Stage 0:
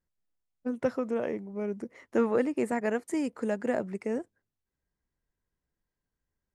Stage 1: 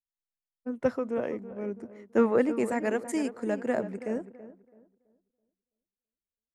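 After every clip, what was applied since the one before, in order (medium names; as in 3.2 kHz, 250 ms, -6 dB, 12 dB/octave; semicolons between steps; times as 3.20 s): on a send: filtered feedback delay 330 ms, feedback 49%, low-pass 1.8 kHz, level -10 dB; on the sum: three bands expanded up and down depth 70%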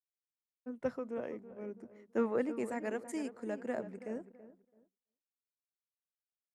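hum notches 50/100/150/200 Hz; expander -55 dBFS; trim -9 dB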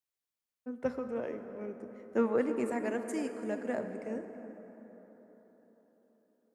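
plate-style reverb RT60 4.6 s, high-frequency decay 0.45×, DRR 7.5 dB; trim +2.5 dB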